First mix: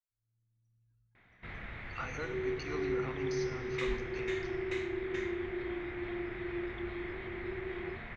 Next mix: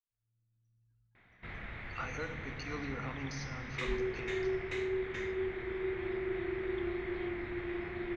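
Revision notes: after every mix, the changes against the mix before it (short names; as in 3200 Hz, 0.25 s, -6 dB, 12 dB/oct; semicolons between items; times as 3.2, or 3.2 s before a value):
second sound: entry +1.55 s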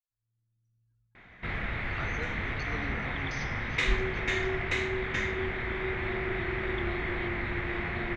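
first sound +11.0 dB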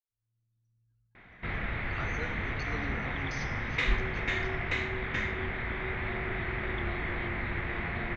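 first sound: add air absorption 110 m; second sound -6.5 dB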